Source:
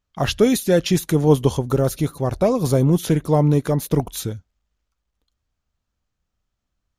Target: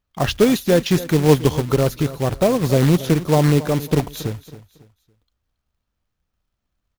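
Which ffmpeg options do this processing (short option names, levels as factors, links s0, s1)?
-filter_complex "[0:a]equalizer=f=9100:t=o:w=0.92:g=-11,acrusher=bits=3:mode=log:mix=0:aa=0.000001,asplit=2[s0][s1];[s1]aecho=0:1:276|552|828:0.158|0.0507|0.0162[s2];[s0][s2]amix=inputs=2:normalize=0,volume=1.12"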